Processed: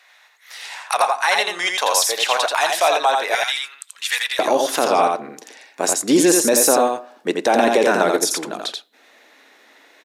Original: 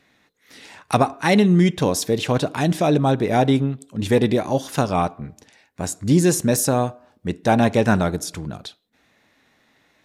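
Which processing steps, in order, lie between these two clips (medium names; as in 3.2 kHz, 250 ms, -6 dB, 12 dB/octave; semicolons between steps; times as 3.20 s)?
high-pass 720 Hz 24 dB/octave, from 3.35 s 1.5 kHz, from 4.39 s 320 Hz; peak limiter -15.5 dBFS, peak gain reduction 10 dB; delay 85 ms -3.5 dB; trim +9 dB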